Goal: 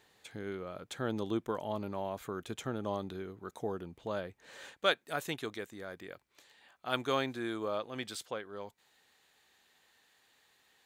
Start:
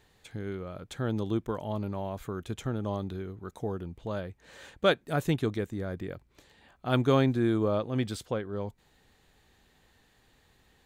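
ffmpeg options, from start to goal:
ffmpeg -i in.wav -af "asetnsamples=nb_out_samples=441:pad=0,asendcmd='4.73 highpass f 1100',highpass=frequency=340:poles=1" out.wav

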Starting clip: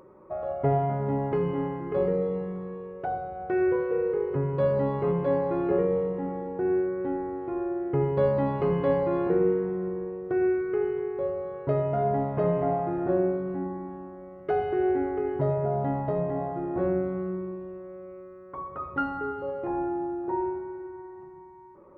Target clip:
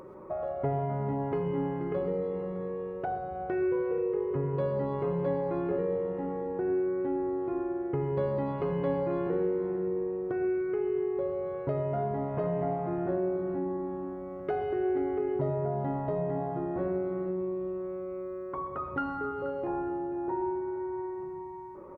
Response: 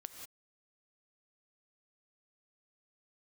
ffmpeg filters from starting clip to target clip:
-filter_complex "[0:a]acompressor=threshold=-42dB:ratio=2,aecho=1:1:481:0.211,asplit=2[link_01][link_02];[1:a]atrim=start_sample=2205,asetrate=61740,aresample=44100[link_03];[link_02][link_03]afir=irnorm=-1:irlink=0,volume=7dB[link_04];[link_01][link_04]amix=inputs=2:normalize=0"

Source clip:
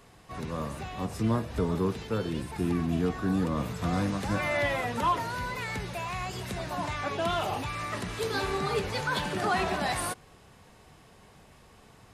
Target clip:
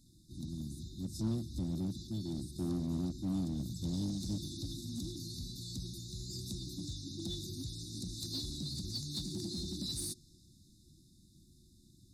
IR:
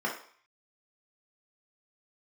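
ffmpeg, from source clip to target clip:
-filter_complex "[0:a]afftfilt=real='re*(1-between(b*sr/4096,370,3500))':imag='im*(1-between(b*sr/4096,370,3500))':win_size=4096:overlap=0.75,adynamicequalizer=threshold=0.002:dfrequency=5200:dqfactor=1.1:tfrequency=5200:tqfactor=1.1:attack=5:release=100:ratio=0.375:range=3:mode=boostabove:tftype=bell,asplit=2[link_01][link_02];[link_02]aeval=exprs='0.0316*(abs(mod(val(0)/0.0316+3,4)-2)-1)':channel_layout=same,volume=-9dB[link_03];[link_01][link_03]amix=inputs=2:normalize=0,volume=-7.5dB"

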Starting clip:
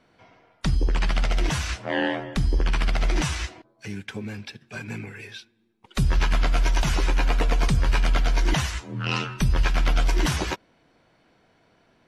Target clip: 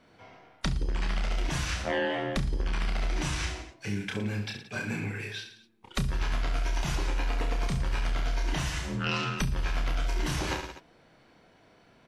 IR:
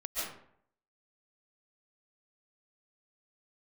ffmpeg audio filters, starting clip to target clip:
-af "aecho=1:1:30|67.5|114.4|173|246.2:0.631|0.398|0.251|0.158|0.1,acompressor=threshold=-26dB:ratio=6"

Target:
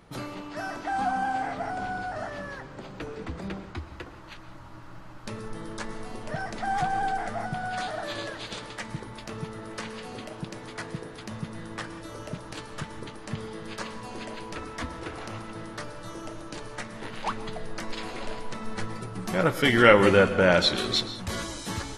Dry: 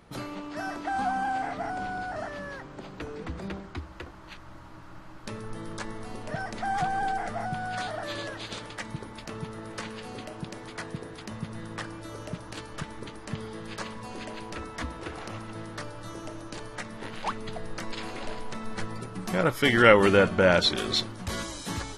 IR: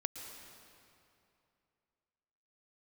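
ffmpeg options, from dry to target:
-filter_complex "[0:a]flanger=delay=6:depth=3.1:regen=-67:speed=2:shape=sinusoidal,asplit=2[link_01][link_02];[1:a]atrim=start_sample=2205,afade=type=out:start_time=0.25:duration=0.01,atrim=end_sample=11466[link_03];[link_02][link_03]afir=irnorm=-1:irlink=0,volume=3dB[link_04];[link_01][link_04]amix=inputs=2:normalize=0,volume=-2dB"

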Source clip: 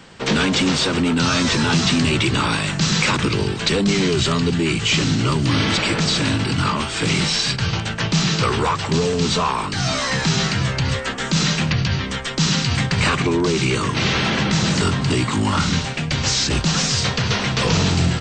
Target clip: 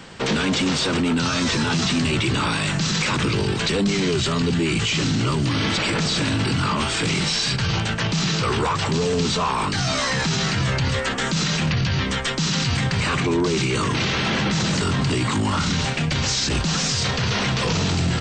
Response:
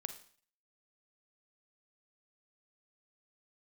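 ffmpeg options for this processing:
-af "alimiter=limit=-17dB:level=0:latency=1:release=15,volume=3dB"

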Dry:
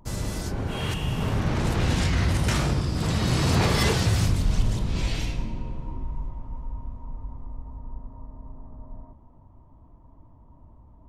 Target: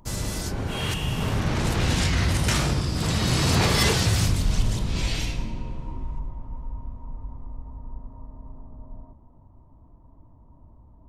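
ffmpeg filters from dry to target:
ffmpeg -i in.wav -af "asetnsamples=nb_out_samples=441:pad=0,asendcmd='6.19 highshelf g -3;8.63 highshelf g -11',highshelf=frequency=2100:gain=5.5" out.wav

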